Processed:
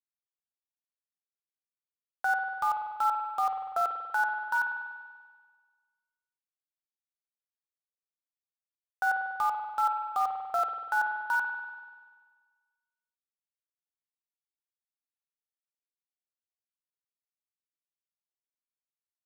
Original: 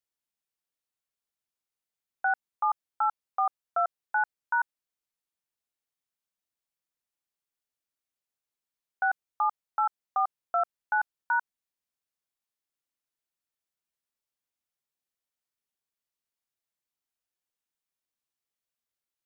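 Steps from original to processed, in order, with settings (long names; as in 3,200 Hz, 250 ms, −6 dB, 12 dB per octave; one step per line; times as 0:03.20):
centre clipping without the shift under −36 dBFS
brickwall limiter −28 dBFS, peak gain reduction 9.5 dB
spring reverb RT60 1.5 s, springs 48 ms, chirp 60 ms, DRR 3.5 dB
level +7.5 dB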